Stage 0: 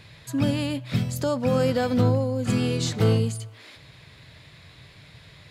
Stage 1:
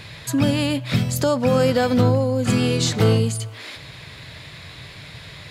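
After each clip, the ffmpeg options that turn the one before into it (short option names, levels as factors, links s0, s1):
-filter_complex "[0:a]lowshelf=f=470:g=-3,asplit=2[s0][s1];[s1]acompressor=threshold=0.0224:ratio=6,volume=1.41[s2];[s0][s2]amix=inputs=2:normalize=0,volume=1.5"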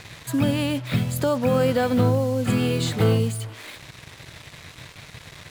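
-af "equalizer=f=5700:t=o:w=0.6:g=-11.5,acrusher=bits=5:mix=0:aa=0.5,volume=0.75"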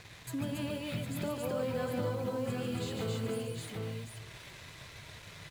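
-af "aecho=1:1:143|273|276|278|754:0.501|0.447|0.531|0.562|0.501,acompressor=threshold=0.0251:ratio=1.5,flanger=delay=1.8:depth=5.8:regen=-66:speed=1.4:shape=sinusoidal,volume=0.501"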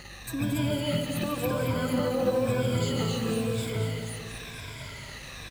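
-filter_complex "[0:a]afftfilt=real='re*pow(10,15/40*sin(2*PI*(1.7*log(max(b,1)*sr/1024/100)/log(2)-(-0.98)*(pts-256)/sr)))':imag='im*pow(10,15/40*sin(2*PI*(1.7*log(max(b,1)*sr/1024/100)/log(2)-(-0.98)*(pts-256)/sr)))':win_size=1024:overlap=0.75,aeval=exprs='val(0)+0.002*(sin(2*PI*50*n/s)+sin(2*PI*2*50*n/s)/2+sin(2*PI*3*50*n/s)/3+sin(2*PI*4*50*n/s)/4+sin(2*PI*5*50*n/s)/5)':c=same,asplit=2[s0][s1];[s1]aecho=0:1:224|448|672|896|1120|1344|1568:0.398|0.231|0.134|0.0777|0.0451|0.0261|0.0152[s2];[s0][s2]amix=inputs=2:normalize=0,volume=1.78"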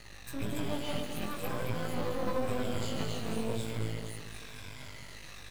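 -af "aeval=exprs='max(val(0),0)':c=same,flanger=delay=17.5:depth=3:speed=0.53"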